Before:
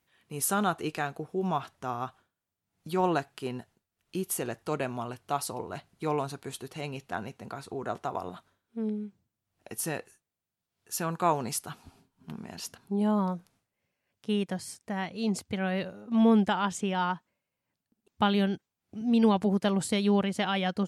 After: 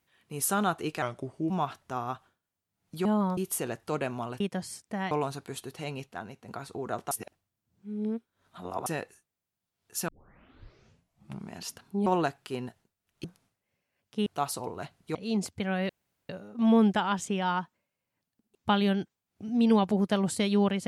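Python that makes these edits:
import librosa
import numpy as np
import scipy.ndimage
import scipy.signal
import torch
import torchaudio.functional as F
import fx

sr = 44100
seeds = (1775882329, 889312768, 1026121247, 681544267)

y = fx.edit(x, sr, fx.speed_span(start_s=1.02, length_s=0.41, speed=0.85),
    fx.swap(start_s=2.98, length_s=1.18, other_s=13.03, other_length_s=0.32),
    fx.swap(start_s=5.19, length_s=0.89, other_s=14.37, other_length_s=0.71),
    fx.clip_gain(start_s=7.03, length_s=0.42, db=-5.0),
    fx.reverse_span(start_s=8.08, length_s=1.75),
    fx.tape_start(start_s=11.05, length_s=1.43),
    fx.insert_room_tone(at_s=15.82, length_s=0.4), tone=tone)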